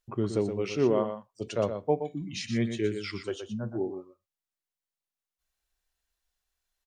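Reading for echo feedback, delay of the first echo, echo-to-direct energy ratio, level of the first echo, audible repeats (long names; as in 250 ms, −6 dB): repeats not evenly spaced, 121 ms, −8.5 dB, −8.5 dB, 1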